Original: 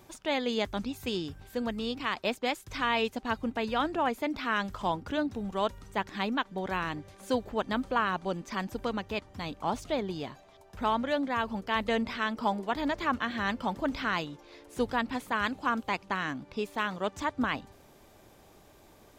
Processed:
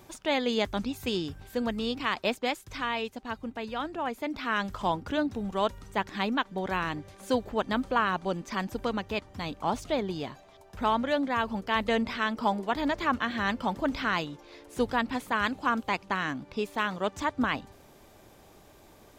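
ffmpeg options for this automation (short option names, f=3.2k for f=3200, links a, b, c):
-af "volume=9dB,afade=t=out:st=2.22:d=0.82:silence=0.446684,afade=t=in:st=3.97:d=0.79:silence=0.473151"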